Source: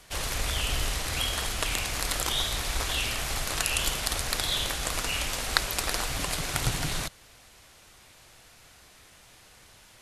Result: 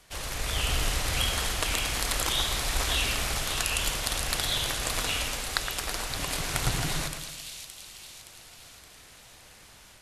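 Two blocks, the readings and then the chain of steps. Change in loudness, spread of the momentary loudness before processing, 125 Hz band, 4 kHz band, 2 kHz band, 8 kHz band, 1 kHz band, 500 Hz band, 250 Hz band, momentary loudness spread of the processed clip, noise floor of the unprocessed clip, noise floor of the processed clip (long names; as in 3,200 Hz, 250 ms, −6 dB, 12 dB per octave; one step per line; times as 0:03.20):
0.0 dB, 3 LU, +0.5 dB, +0.5 dB, 0.0 dB, +0.5 dB, 0.0 dB, +0.5 dB, +0.5 dB, 17 LU, −55 dBFS, −52 dBFS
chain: automatic gain control gain up to 5.5 dB
echo with a time of its own for lows and highs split 2,600 Hz, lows 115 ms, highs 569 ms, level −7 dB
level −4.5 dB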